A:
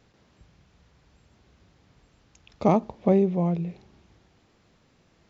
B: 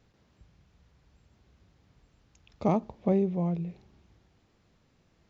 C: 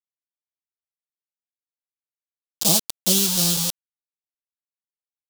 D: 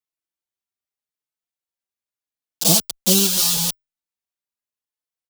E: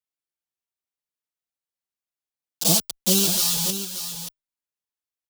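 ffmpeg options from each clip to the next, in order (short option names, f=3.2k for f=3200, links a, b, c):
-af "lowshelf=f=140:g=6,volume=-6.5dB"
-af "aecho=1:1:6:0.95,acrusher=bits=4:mix=0:aa=0.000001,aexciter=amount=10.6:drive=6.5:freq=3.1k,volume=-4dB"
-filter_complex "[0:a]asplit=2[a][b];[b]adelay=4.2,afreqshift=0.81[c];[a][c]amix=inputs=2:normalize=1,volume=5.5dB"
-af "aecho=1:1:580:0.335,volume=-3.5dB"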